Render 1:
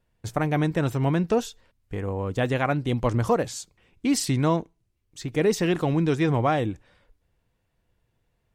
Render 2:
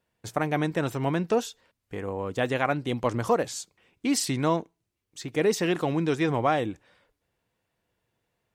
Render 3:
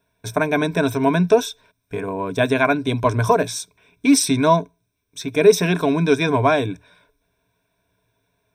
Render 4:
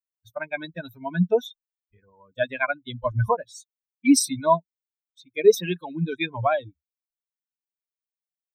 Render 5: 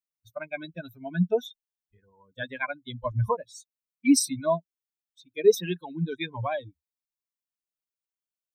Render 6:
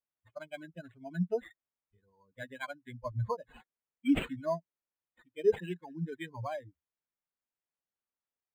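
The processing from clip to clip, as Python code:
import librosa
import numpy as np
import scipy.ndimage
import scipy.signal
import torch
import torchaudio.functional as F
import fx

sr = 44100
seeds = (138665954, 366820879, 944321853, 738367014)

y1 = fx.highpass(x, sr, hz=260.0, slope=6)
y2 = fx.ripple_eq(y1, sr, per_octave=1.6, db=15)
y2 = y2 * librosa.db_to_amplitude(5.5)
y3 = fx.bin_expand(y2, sr, power=3.0)
y4 = fx.notch_cascade(y3, sr, direction='rising', hz=0.27)
y4 = y4 * librosa.db_to_amplitude(-2.5)
y5 = np.interp(np.arange(len(y4)), np.arange(len(y4))[::8], y4[::8])
y5 = y5 * librosa.db_to_amplitude(-7.5)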